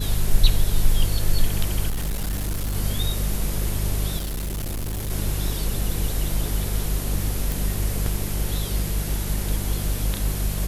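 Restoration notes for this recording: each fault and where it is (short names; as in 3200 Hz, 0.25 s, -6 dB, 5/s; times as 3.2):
hum 50 Hz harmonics 4 -26 dBFS
1.89–2.76 clipped -22 dBFS
4.17–5.11 clipped -25 dBFS
7.52 pop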